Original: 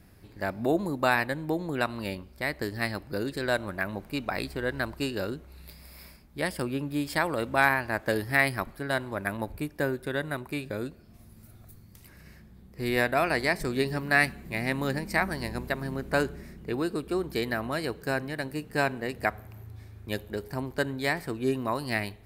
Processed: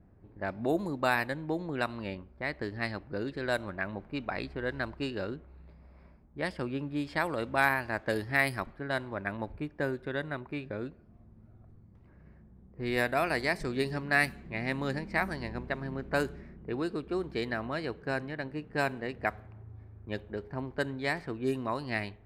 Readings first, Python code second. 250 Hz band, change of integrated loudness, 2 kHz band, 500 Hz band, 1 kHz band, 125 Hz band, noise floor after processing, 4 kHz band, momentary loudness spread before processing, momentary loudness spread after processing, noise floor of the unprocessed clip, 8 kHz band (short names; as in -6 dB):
-3.5 dB, -3.5 dB, -3.5 dB, -3.5 dB, -3.5 dB, -3.5 dB, -57 dBFS, -5.0 dB, 11 LU, 11 LU, -53 dBFS, -7.5 dB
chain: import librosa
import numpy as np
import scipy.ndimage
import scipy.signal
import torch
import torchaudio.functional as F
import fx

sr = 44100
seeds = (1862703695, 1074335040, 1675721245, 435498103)

y = fx.env_lowpass(x, sr, base_hz=910.0, full_db=-21.0)
y = y * librosa.db_to_amplitude(-3.5)